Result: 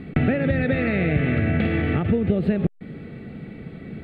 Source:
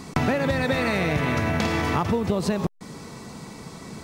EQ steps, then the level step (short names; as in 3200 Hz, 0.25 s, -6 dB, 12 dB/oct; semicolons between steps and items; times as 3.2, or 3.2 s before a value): air absorption 440 m; fixed phaser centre 2400 Hz, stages 4; +5.0 dB